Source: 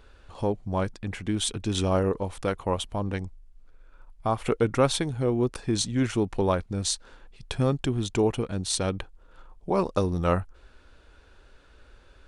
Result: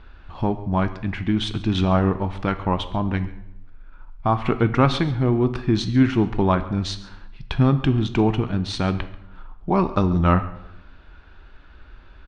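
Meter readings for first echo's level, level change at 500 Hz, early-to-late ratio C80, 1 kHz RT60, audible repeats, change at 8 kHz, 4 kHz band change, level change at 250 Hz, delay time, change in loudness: −20.0 dB, +1.5 dB, 15.0 dB, 0.80 s, 1, −11.5 dB, +1.5 dB, +7.5 dB, 137 ms, +5.5 dB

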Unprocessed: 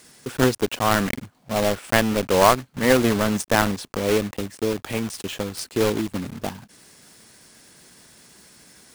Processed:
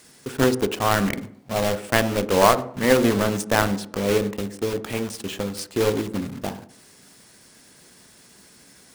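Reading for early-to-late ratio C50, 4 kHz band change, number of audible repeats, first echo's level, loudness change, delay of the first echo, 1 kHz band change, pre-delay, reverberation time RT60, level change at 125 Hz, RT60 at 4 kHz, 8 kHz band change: 15.0 dB, −1.0 dB, no echo audible, no echo audible, −0.5 dB, no echo audible, −0.5 dB, 6 ms, 0.60 s, 0.0 dB, 0.55 s, −1.0 dB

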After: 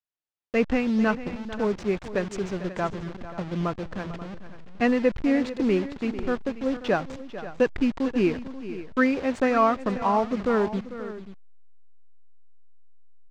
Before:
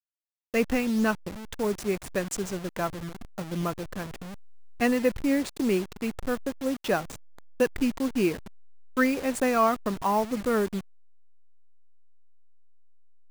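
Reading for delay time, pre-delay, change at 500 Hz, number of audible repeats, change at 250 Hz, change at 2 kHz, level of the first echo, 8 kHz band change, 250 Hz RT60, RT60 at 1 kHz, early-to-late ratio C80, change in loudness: 446 ms, no reverb audible, +2.5 dB, 2, +2.5 dB, +1.5 dB, −14.0 dB, below −10 dB, no reverb audible, no reverb audible, no reverb audible, +1.5 dB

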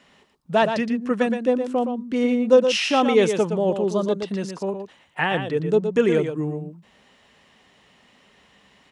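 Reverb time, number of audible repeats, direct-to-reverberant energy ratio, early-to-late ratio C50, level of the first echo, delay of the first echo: no reverb audible, 1, no reverb audible, no reverb audible, −7.5 dB, 118 ms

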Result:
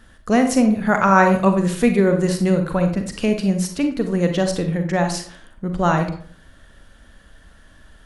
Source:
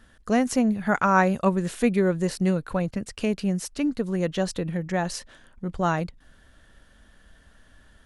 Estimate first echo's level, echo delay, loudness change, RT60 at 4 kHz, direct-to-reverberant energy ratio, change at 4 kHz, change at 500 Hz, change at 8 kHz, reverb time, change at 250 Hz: no echo audible, no echo audible, +6.0 dB, 0.35 s, 5.5 dB, +6.0 dB, +6.5 dB, +5.5 dB, 0.55 s, +6.5 dB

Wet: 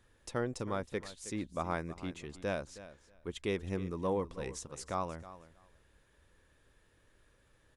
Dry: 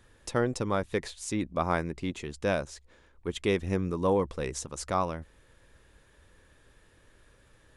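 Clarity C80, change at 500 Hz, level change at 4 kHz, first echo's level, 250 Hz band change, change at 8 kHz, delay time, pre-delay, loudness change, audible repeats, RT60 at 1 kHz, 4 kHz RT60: no reverb audible, −7.5 dB, −7.5 dB, −15.5 dB, −7.5 dB, −7.5 dB, 318 ms, no reverb audible, −7.5 dB, 2, no reverb audible, no reverb audible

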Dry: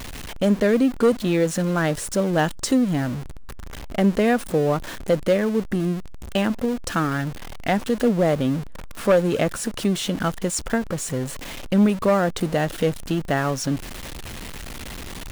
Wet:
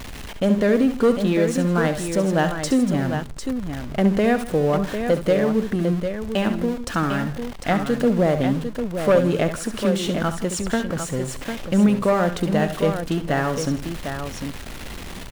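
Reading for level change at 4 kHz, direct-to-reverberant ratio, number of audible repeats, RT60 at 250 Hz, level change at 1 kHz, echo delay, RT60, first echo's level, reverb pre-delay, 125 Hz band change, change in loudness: −0.5 dB, no reverb audible, 3, no reverb audible, +1.0 dB, 68 ms, no reverb audible, −11.5 dB, no reverb audible, +1.5 dB, +0.5 dB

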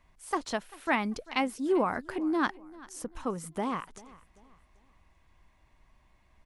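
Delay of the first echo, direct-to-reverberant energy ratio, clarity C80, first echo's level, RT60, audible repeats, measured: 392 ms, no reverb audible, no reverb audible, −21.0 dB, no reverb audible, 2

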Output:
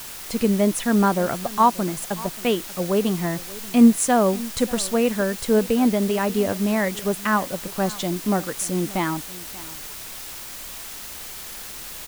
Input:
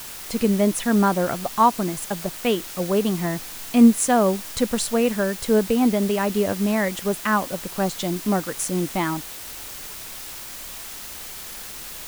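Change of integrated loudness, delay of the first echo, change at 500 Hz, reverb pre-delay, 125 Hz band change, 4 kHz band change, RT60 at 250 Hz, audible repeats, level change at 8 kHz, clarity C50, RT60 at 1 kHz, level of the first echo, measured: 0.0 dB, 584 ms, 0.0 dB, no reverb audible, 0.0 dB, 0.0 dB, no reverb audible, 1, 0.0 dB, no reverb audible, no reverb audible, −19.5 dB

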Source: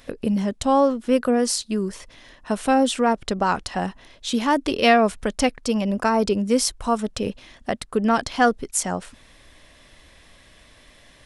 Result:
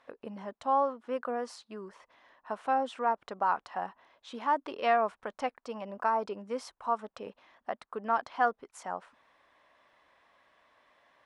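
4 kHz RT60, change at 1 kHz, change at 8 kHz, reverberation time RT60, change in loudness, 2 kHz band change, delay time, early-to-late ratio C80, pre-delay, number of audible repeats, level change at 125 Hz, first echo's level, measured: no reverb audible, −6.5 dB, below −25 dB, no reverb audible, −10.5 dB, −11.5 dB, no echo audible, no reverb audible, no reverb audible, no echo audible, below −20 dB, no echo audible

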